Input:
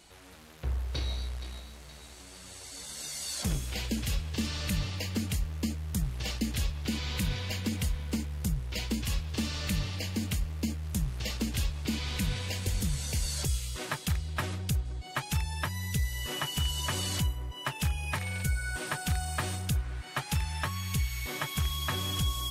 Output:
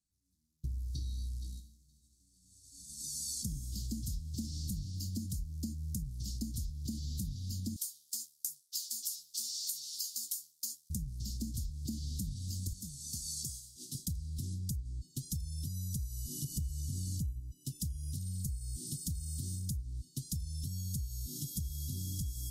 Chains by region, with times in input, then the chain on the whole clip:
7.76–10.9 Chebyshev high-pass 1000 Hz + tilt +3 dB/oct + doubler 13 ms -3 dB
12.73–13.95 HPF 490 Hz 6 dB/oct + high shelf 6400 Hz -3.5 dB
16.44–17.4 low shelf 280 Hz +8 dB + upward compressor, threshold -31 dBFS
whole clip: expander -34 dBFS; inverse Chebyshev band-stop 560–2400 Hz, stop band 50 dB; compressor 6:1, threshold -41 dBFS; gain +5 dB

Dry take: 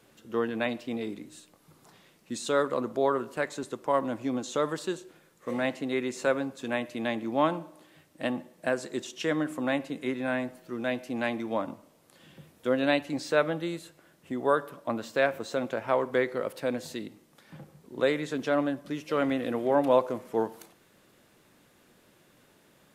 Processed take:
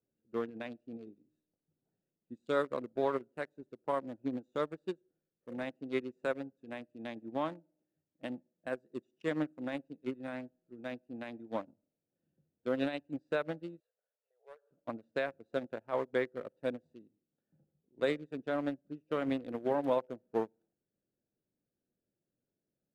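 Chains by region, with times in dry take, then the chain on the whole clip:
13.8–14.71 compressor 2:1, threshold -37 dBFS + brick-wall FIR high-pass 410 Hz
whole clip: Wiener smoothing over 41 samples; limiter -19 dBFS; upward expander 2.5:1, over -42 dBFS

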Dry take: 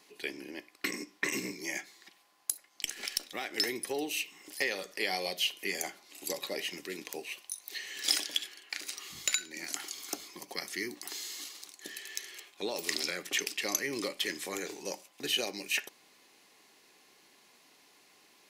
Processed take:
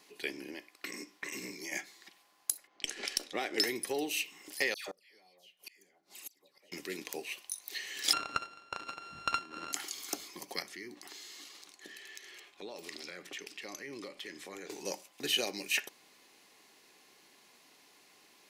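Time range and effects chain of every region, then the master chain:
0.54–1.72 low shelf 320 Hz -5 dB + compressor 3:1, threshold -39 dBFS
2.67–3.62 low-pass opened by the level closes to 2500 Hz, open at -32 dBFS + bell 430 Hz +6.5 dB 1.5 oct
4.74–6.72 dispersion lows, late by 0.142 s, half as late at 1600 Hz + flipped gate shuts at -32 dBFS, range -30 dB
8.13–9.73 sample sorter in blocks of 32 samples + air absorption 130 m
10.62–14.7 LPF 3800 Hz 6 dB/oct + compressor 2:1, threshold -48 dBFS
whole clip: dry

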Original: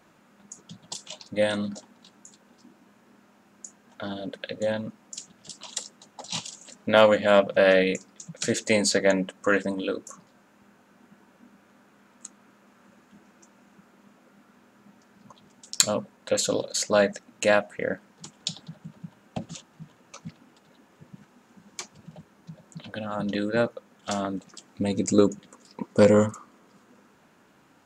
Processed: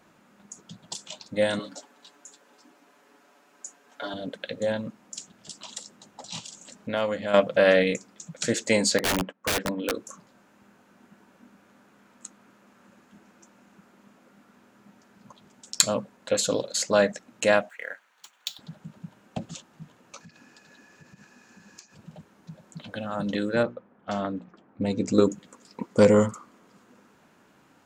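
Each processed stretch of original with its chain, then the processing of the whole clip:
1.59–4.14 HPF 360 Hz + comb 7 ms, depth 83%
5.69–7.34 low shelf 210 Hz +4 dB + compressor 1.5:1, threshold -41 dBFS
8.98–9.94 gate -43 dBFS, range -15 dB + BPF 140–2500 Hz + wrapped overs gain 19 dB
17.69–18.59 median filter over 5 samples + HPF 1200 Hz + notch 5100 Hz, Q 8.1
20.2–21.95 band shelf 5500 Hz +8.5 dB 1 oct + small resonant body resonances 1700/2500 Hz, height 16 dB, ringing for 30 ms + compressor, threshold -46 dBFS
23.63–25.32 low-pass opened by the level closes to 1400 Hz, open at -17.5 dBFS + notches 60/120/180/240/300/360/420 Hz + mismatched tape noise reduction decoder only
whole clip: dry

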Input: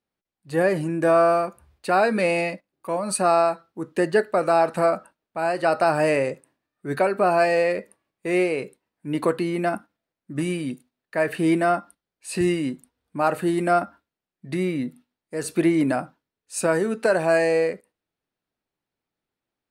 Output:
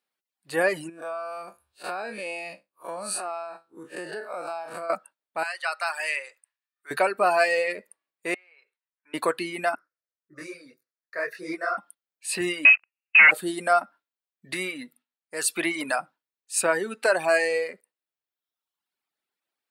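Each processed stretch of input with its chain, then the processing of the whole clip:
0.89–4.9 time blur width 0.106 s + notch 2000 Hz, Q 7.2 + compressor 10:1, threshold -26 dBFS
5.43–6.91 HPF 1400 Hz + high shelf 6000 Hz -5 dB
8.34–9.14 HPF 1400 Hz + compressor 3:1, threshold -42 dBFS + tape spacing loss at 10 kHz 32 dB
9.75–11.78 resonant high shelf 6900 Hz -7 dB, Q 3 + fixed phaser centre 830 Hz, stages 6 + detuned doubles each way 59 cents
12.65–13.31 sample leveller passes 5 + compressor 3:1, threshold -16 dBFS + inverted band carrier 2800 Hz
14.52–15.99 tilt shelf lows -4 dB, about 920 Hz + mismatched tape noise reduction decoder only
whole clip: HPF 1200 Hz 6 dB/oct; bell 6100 Hz -3.5 dB 0.3 oct; reverb removal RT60 1.1 s; gain +5 dB

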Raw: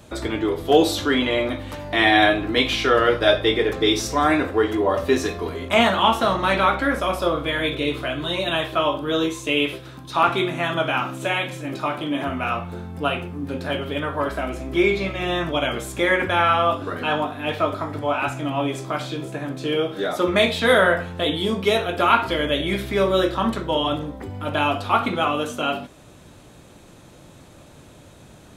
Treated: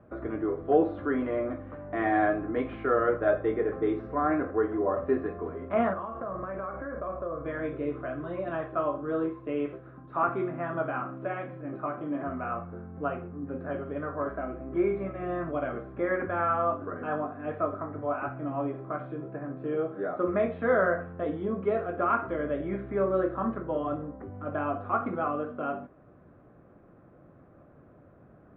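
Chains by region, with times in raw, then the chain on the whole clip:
5.93–7.46 air absorption 480 m + compressor 10:1, threshold -23 dBFS + comb 1.8 ms, depth 33%
whole clip: inverse Chebyshev low-pass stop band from 7900 Hz, stop band 80 dB; low shelf 82 Hz -8 dB; notch 900 Hz, Q 5.2; gain -6.5 dB

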